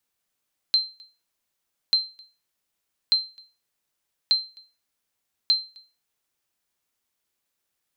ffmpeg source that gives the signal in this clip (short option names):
-f lavfi -i "aevalsrc='0.251*(sin(2*PI*4120*mod(t,1.19))*exp(-6.91*mod(t,1.19)/0.31)+0.0398*sin(2*PI*4120*max(mod(t,1.19)-0.26,0))*exp(-6.91*max(mod(t,1.19)-0.26,0)/0.31))':d=5.95:s=44100"